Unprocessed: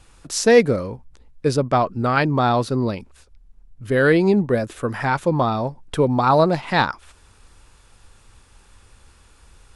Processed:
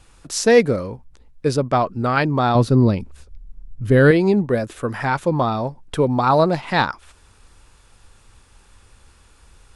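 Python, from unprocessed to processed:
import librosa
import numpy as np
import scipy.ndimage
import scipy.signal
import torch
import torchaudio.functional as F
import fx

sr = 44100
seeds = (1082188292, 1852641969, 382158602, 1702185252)

y = fx.low_shelf(x, sr, hz=310.0, db=11.0, at=(2.55, 4.11))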